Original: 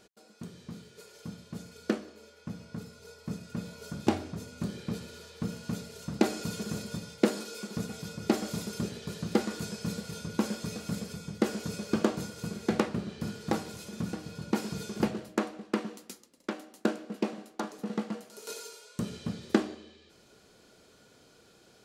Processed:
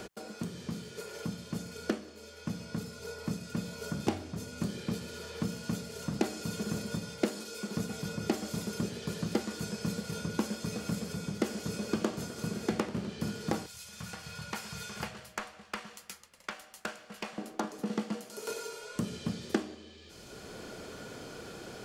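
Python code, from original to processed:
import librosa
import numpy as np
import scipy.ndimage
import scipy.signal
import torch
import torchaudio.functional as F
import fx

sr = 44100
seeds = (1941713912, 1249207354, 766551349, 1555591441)

y = fx.echo_warbled(x, sr, ms=85, feedback_pct=77, rate_hz=2.8, cents=146, wet_db=-17.5, at=(10.61, 13.07))
y = fx.tone_stack(y, sr, knobs='10-0-10', at=(13.66, 17.38))
y = fx.notch(y, sr, hz=3900.0, q=19.0)
y = fx.band_squash(y, sr, depth_pct=70)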